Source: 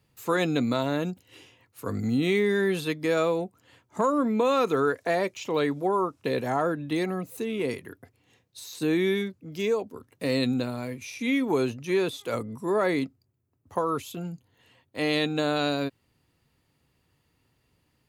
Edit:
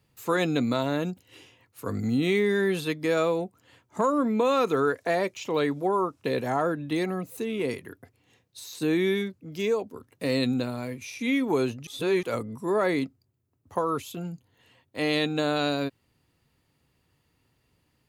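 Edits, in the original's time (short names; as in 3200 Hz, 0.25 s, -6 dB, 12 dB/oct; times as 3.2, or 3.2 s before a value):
11.87–12.23 reverse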